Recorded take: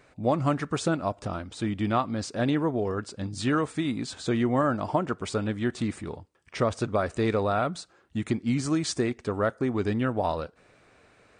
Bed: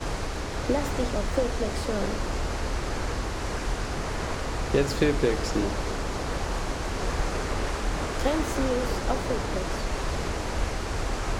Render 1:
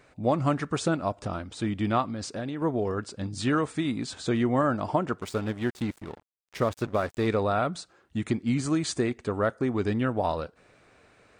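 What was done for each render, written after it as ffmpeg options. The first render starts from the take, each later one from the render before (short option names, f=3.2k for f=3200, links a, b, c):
-filter_complex "[0:a]asettb=1/sr,asplit=3[a][b][c];[a]atrim=end=2.064[d];[b]atrim=start=2.06:end=2.62,asetpts=PTS-STARTPTS,afade=t=in:d=0.004:c=qsin,afade=t=out:st=0.556:d=0.004:c=qsin,acompressor=threshold=-29dB:ratio=6:attack=3.2:release=140:knee=1:detection=peak[e];[c]atrim=start=2.616[f];[d][e]acrossfade=d=0.004:c1=hsin:c2=qsin[g];[g][f]acrossfade=d=0.004:c1=qsin:c2=hsin,asettb=1/sr,asplit=3[h][i][j];[h]atrim=end=5.204[k];[i]atrim=start=5.2:end=7.27,asetpts=PTS-STARTPTS,afade=t=in:d=0.004:c=qsin,afade=t=out:st=2.066:d=0.004:c=qsin,aeval=exprs='sgn(val(0))*max(abs(val(0))-0.00891,0)':c=same[l];[j]atrim=start=7.266[m];[k][l]acrossfade=d=0.004:c1=hsin:c2=qsin[n];[n][m]acrossfade=d=0.004:c1=qsin:c2=hsin,asettb=1/sr,asplit=3[o][p][q];[o]atrim=end=8.414[r];[p]atrim=start=8.41:end=9.38,asetpts=PTS-STARTPTS,afade=t=in:d=0.004:c=qsin,afade=t=out:st=0.966:d=0.004:c=qsin,equalizer=f=5.4k:w=7.8:g=-7[s];[q]atrim=start=9.376[t];[r][s]acrossfade=d=0.004:c1=hsin:c2=qsin[u];[u][t]acrossfade=d=0.004:c1=qsin:c2=hsin"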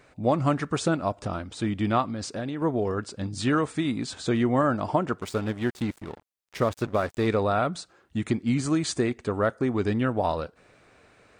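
-af "volume=1.5dB"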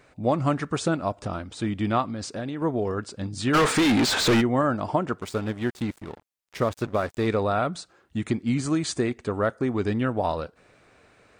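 -filter_complex "[0:a]asplit=3[a][b][c];[a]afade=t=out:st=3.53:d=0.02[d];[b]asplit=2[e][f];[f]highpass=f=720:p=1,volume=34dB,asoftclip=type=tanh:threshold=-12.5dB[g];[e][g]amix=inputs=2:normalize=0,lowpass=f=3.3k:p=1,volume=-6dB,afade=t=in:st=3.53:d=0.02,afade=t=out:st=4.4:d=0.02[h];[c]afade=t=in:st=4.4:d=0.02[i];[d][h][i]amix=inputs=3:normalize=0"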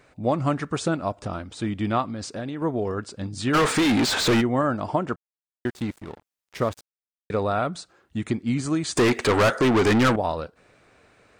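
-filter_complex "[0:a]asettb=1/sr,asplit=3[a][b][c];[a]atrim=end=8.974[d];[b]atrim=start=8.97:end=10.16,asetpts=PTS-STARTPTS,afade=t=in:d=0.004:c=qsin,afade=t=out:st=1.186:d=0.004:c=qsin,asplit=2[e][f];[f]highpass=f=720:p=1,volume=30dB,asoftclip=type=tanh:threshold=-11.5dB[g];[e][g]amix=inputs=2:normalize=0,lowpass=f=6.8k:p=1,volume=-6dB[h];[c]atrim=start=10.156[i];[d][h]acrossfade=d=0.004:c1=hsin:c2=qsin[j];[j][i]acrossfade=d=0.004:c1=qsin:c2=hsin,asplit=5[k][l][m][n][o];[k]atrim=end=5.16,asetpts=PTS-STARTPTS,afade=t=out:st=5.156:d=0.004:c=hsin[p];[l]atrim=start=5.16:end=5.65,asetpts=PTS-STARTPTS,volume=0[q];[m]atrim=start=5.65:end=6.81,asetpts=PTS-STARTPTS,afade=t=in:d=0.004:c=hsin,afade=t=out:st=1.156:d=0.004:c=hsin[r];[n]atrim=start=6.81:end=7.3,asetpts=PTS-STARTPTS,volume=0[s];[o]atrim=start=7.3,asetpts=PTS-STARTPTS,afade=t=in:d=0.004:c=hsin[t];[p][q][r][s][t]concat=n=5:v=0:a=1"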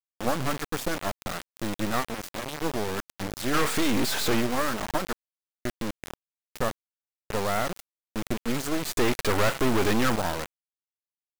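-af "aeval=exprs='max(val(0),0)':c=same,acrusher=bits=4:mix=0:aa=0.000001"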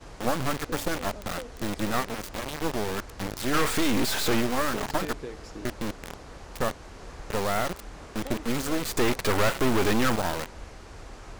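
-filter_complex "[1:a]volume=-14.5dB[a];[0:a][a]amix=inputs=2:normalize=0"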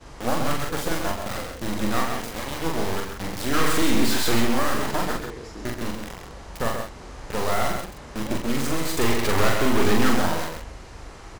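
-filter_complex "[0:a]asplit=2[a][b];[b]adelay=43,volume=-3dB[c];[a][c]amix=inputs=2:normalize=0,asplit=2[d][e];[e]aecho=0:1:42|131:0.299|0.531[f];[d][f]amix=inputs=2:normalize=0"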